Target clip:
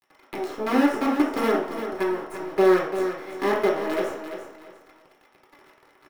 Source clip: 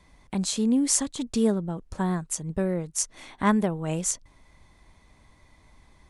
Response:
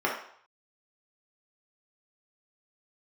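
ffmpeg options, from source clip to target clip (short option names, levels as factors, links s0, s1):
-filter_complex "[0:a]aeval=exprs='if(lt(val(0),0),0.251*val(0),val(0))':c=same,lowshelf=f=220:t=q:w=3:g=-12,acrossover=split=220|590|1900[s0][s1][s2][s3];[s0]acompressor=threshold=0.00316:ratio=4[s4];[s1]acompressor=threshold=0.0282:ratio=4[s5];[s2]acompressor=threshold=0.00282:ratio=4[s6];[s3]acompressor=threshold=0.00398:ratio=4[s7];[s4][s5][s6][s7]amix=inputs=4:normalize=0,acrusher=bits=6:dc=4:mix=0:aa=0.000001,aecho=1:1:343|686|1029:0.355|0.0923|0.024[s8];[1:a]atrim=start_sample=2205[s9];[s8][s9]afir=irnorm=-1:irlink=0"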